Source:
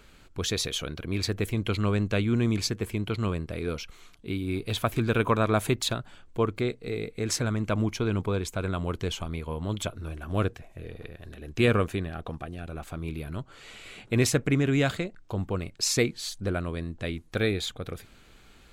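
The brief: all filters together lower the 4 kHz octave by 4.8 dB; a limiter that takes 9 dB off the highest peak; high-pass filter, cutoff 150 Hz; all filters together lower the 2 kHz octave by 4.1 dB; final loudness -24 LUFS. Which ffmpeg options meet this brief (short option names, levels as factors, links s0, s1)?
-af "highpass=150,equalizer=f=2000:t=o:g=-4,equalizer=f=4000:t=o:g=-5,volume=2.99,alimiter=limit=0.335:level=0:latency=1"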